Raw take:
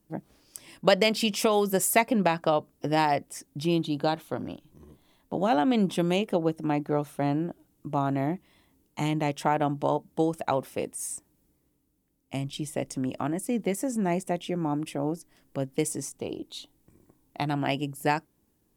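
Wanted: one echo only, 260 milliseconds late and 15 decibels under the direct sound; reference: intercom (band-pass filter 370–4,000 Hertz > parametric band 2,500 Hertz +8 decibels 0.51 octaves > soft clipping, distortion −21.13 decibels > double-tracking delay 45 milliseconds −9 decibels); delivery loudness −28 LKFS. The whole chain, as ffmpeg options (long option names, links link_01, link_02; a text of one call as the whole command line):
ffmpeg -i in.wav -filter_complex "[0:a]highpass=370,lowpass=4000,equalizer=frequency=2500:width_type=o:width=0.51:gain=8,aecho=1:1:260:0.178,asoftclip=threshold=-10dB,asplit=2[link_01][link_02];[link_02]adelay=45,volume=-9dB[link_03];[link_01][link_03]amix=inputs=2:normalize=0,volume=1.5dB" out.wav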